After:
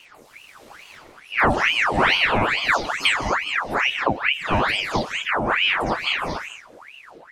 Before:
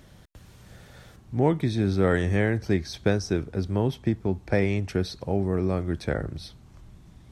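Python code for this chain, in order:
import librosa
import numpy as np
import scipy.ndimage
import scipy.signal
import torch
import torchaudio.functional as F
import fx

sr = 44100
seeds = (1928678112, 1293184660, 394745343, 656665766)

y = fx.spec_delay(x, sr, highs='early', ms=202)
y = fx.rev_gated(y, sr, seeds[0], gate_ms=240, shape='rising', drr_db=4.5)
y = fx.ring_lfo(y, sr, carrier_hz=1600.0, swing_pct=75, hz=2.3)
y = y * 10.0 ** (6.5 / 20.0)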